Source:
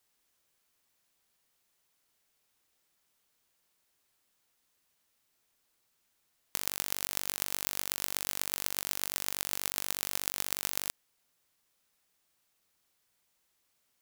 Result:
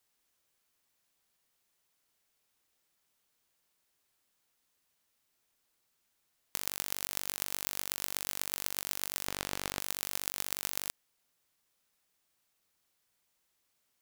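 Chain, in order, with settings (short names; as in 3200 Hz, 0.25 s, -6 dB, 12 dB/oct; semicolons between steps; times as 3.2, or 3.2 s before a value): 9.28–9.8 overdrive pedal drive 19 dB, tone 4000 Hz, clips at -1.5 dBFS; gain -2 dB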